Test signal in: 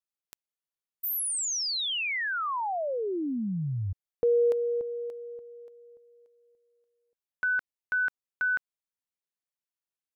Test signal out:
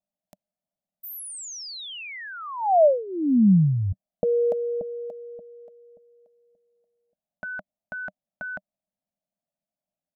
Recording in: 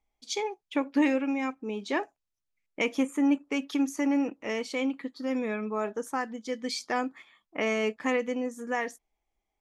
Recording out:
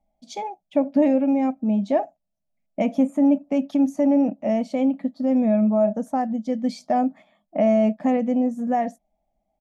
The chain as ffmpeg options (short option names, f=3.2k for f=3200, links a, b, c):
-filter_complex "[0:a]firequalizer=gain_entry='entry(120,0);entry(190,13);entry(420,-13);entry(610,14);entry(990,-9);entry(1400,-13)':delay=0.05:min_phase=1,asplit=2[a][b];[b]alimiter=limit=-21dB:level=0:latency=1,volume=0.5dB[c];[a][c]amix=inputs=2:normalize=0"